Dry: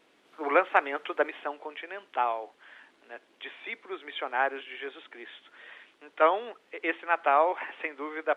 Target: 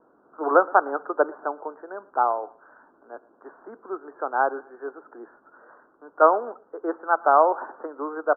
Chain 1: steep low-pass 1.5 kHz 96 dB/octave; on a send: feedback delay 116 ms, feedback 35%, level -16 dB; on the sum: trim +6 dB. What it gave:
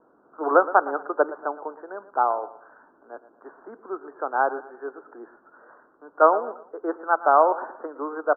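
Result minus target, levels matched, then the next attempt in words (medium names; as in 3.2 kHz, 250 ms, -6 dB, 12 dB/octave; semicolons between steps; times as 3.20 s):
echo-to-direct +8 dB
steep low-pass 1.5 kHz 96 dB/octave; on a send: feedback delay 116 ms, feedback 35%, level -24 dB; on the sum: trim +6 dB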